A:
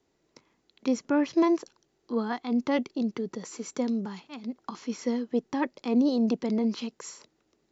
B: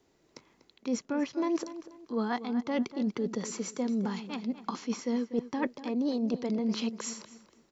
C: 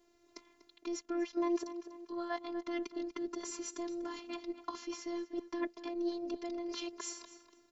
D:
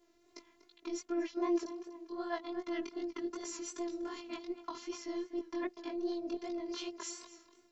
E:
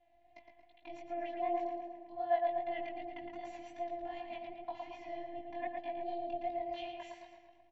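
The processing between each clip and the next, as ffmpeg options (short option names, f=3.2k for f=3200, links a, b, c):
-filter_complex "[0:a]areverse,acompressor=threshold=-31dB:ratio=10,areverse,asplit=2[a][b];[b]adelay=243,lowpass=f=3.4k:p=1,volume=-13dB,asplit=2[c][d];[d]adelay=243,lowpass=f=3.4k:p=1,volume=0.33,asplit=2[e][f];[f]adelay=243,lowpass=f=3.4k:p=1,volume=0.33[g];[a][c][e][g]amix=inputs=4:normalize=0,volume=4dB"
-filter_complex "[0:a]afftfilt=real='hypot(re,im)*cos(PI*b)':imag='0':win_size=512:overlap=0.75,asplit=2[a][b];[b]acompressor=threshold=-44dB:ratio=6,volume=0dB[c];[a][c]amix=inputs=2:normalize=0,volume=-4dB"
-af "flanger=delay=17:depth=6:speed=2.6,volume=2.5dB"
-filter_complex "[0:a]firequalizer=gain_entry='entry(150,0);entry(410,-24);entry(730,10);entry(1200,-26);entry(1800,-3);entry(2900,-4);entry(5200,-28)':delay=0.05:min_phase=1,asplit=2[a][b];[b]adelay=113,lowpass=f=3k:p=1,volume=-3.5dB,asplit=2[c][d];[d]adelay=113,lowpass=f=3k:p=1,volume=0.55,asplit=2[e][f];[f]adelay=113,lowpass=f=3k:p=1,volume=0.55,asplit=2[g][h];[h]adelay=113,lowpass=f=3k:p=1,volume=0.55,asplit=2[i][j];[j]adelay=113,lowpass=f=3k:p=1,volume=0.55,asplit=2[k][l];[l]adelay=113,lowpass=f=3k:p=1,volume=0.55,asplit=2[m][n];[n]adelay=113,lowpass=f=3k:p=1,volume=0.55,asplit=2[o][p];[p]adelay=113,lowpass=f=3k:p=1,volume=0.55[q];[a][c][e][g][i][k][m][o][q]amix=inputs=9:normalize=0,volume=3dB"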